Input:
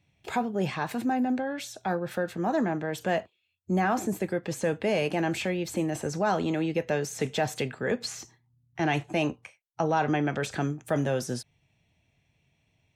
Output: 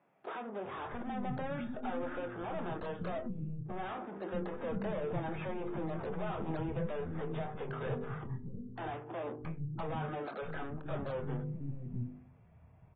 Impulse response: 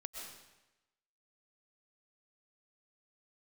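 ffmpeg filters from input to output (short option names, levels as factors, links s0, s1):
-filter_complex "[0:a]lowpass=f=1300:t=q:w=3.2,equalizer=f=300:w=7.1:g=-8.5,bandreject=f=50.17:t=h:w=4,bandreject=f=100.34:t=h:w=4,bandreject=f=150.51:t=h:w=4,bandreject=f=200.68:t=h:w=4,bandreject=f=250.85:t=h:w=4,bandreject=f=301.02:t=h:w=4,bandreject=f=351.19:t=h:w=4,bandreject=f=401.36:t=h:w=4,bandreject=f=451.53:t=h:w=4,bandreject=f=501.7:t=h:w=4,acompressor=threshold=0.0251:ratio=5,aeval=exprs='(tanh(158*val(0)+0.25)-tanh(0.25))/158':c=same,tiltshelf=f=970:g=6.5,asplit=2[s0][s1];[s1]adelay=25,volume=0.251[s2];[s0][s2]amix=inputs=2:normalize=0,acrossover=split=260[s3][s4];[s3]adelay=650[s5];[s5][s4]amix=inputs=2:normalize=0,volume=1.68" -ar 32000 -c:a aac -b:a 16k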